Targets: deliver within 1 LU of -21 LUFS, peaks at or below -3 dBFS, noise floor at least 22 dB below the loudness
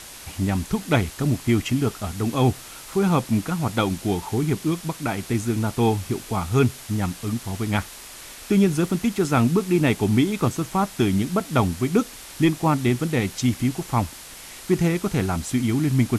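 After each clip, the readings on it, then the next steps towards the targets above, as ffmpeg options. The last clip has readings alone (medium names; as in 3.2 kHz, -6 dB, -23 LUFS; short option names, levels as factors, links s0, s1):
noise floor -41 dBFS; noise floor target -45 dBFS; loudness -23.0 LUFS; peak level -7.5 dBFS; loudness target -21.0 LUFS
-> -af "afftdn=nr=6:nf=-41"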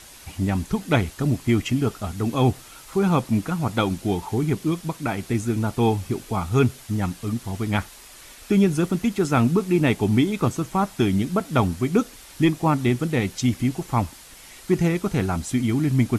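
noise floor -45 dBFS; loudness -23.0 LUFS; peak level -7.5 dBFS; loudness target -21.0 LUFS
-> -af "volume=1.26"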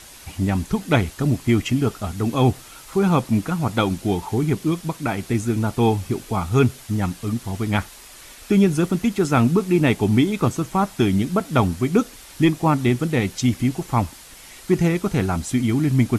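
loudness -21.0 LUFS; peak level -5.5 dBFS; noise floor -43 dBFS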